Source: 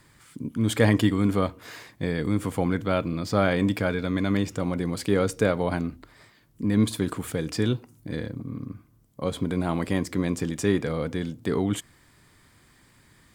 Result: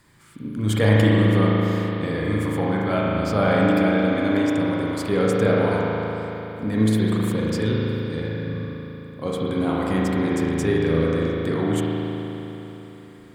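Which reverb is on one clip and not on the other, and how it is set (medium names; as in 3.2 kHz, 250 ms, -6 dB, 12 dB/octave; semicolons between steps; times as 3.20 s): spring tank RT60 3.7 s, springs 37 ms, chirp 35 ms, DRR -5 dB; trim -1.5 dB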